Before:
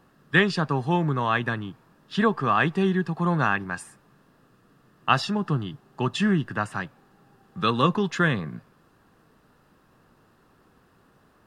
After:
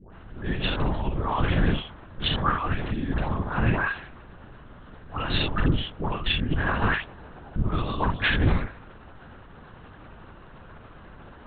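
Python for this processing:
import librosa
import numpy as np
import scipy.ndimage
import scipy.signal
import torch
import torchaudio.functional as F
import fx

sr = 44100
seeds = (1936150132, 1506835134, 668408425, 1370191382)

p1 = fx.over_compress(x, sr, threshold_db=-32.0, ratio=-1.0)
p2 = fx.dispersion(p1, sr, late='highs', ms=126.0, hz=870.0)
p3 = p2 + fx.room_early_taps(p2, sr, ms=(33, 69), db=(-3.5, -4.0), dry=0)
p4 = fx.lpc_vocoder(p3, sr, seeds[0], excitation='whisper', order=8)
y = p4 * 10.0 ** (4.5 / 20.0)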